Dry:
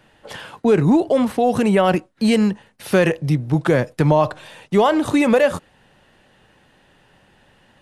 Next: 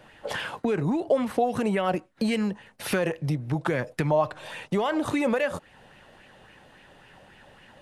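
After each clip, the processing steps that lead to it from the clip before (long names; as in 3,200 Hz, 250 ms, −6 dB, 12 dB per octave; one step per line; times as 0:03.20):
downward compressor 3 to 1, threshold −27 dBFS, peak gain reduction 13 dB
auto-filter bell 3.6 Hz 540–2,500 Hz +8 dB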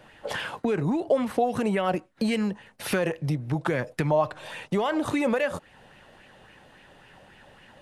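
no processing that can be heard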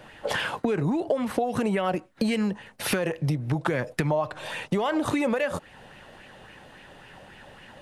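downward compressor 6 to 1, threshold −26 dBFS, peak gain reduction 9 dB
level +4.5 dB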